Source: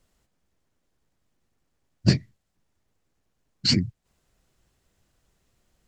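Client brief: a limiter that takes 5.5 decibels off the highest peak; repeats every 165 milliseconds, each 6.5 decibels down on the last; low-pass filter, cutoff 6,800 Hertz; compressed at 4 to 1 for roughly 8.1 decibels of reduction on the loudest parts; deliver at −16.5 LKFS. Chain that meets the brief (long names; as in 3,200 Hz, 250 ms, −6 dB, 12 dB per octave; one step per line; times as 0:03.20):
low-pass filter 6,800 Hz
downward compressor 4 to 1, threshold −22 dBFS
brickwall limiter −18.5 dBFS
repeating echo 165 ms, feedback 47%, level −6.5 dB
level +17 dB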